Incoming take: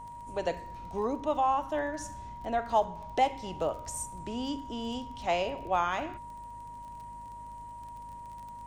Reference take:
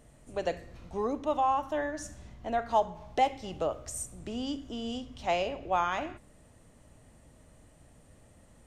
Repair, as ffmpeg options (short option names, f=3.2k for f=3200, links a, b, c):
-af "adeclick=t=4,bandreject=f=52.5:t=h:w=4,bandreject=f=105:t=h:w=4,bandreject=f=157.5:t=h:w=4,bandreject=f=210:t=h:w=4,bandreject=f=262.5:t=h:w=4,bandreject=f=950:w=30"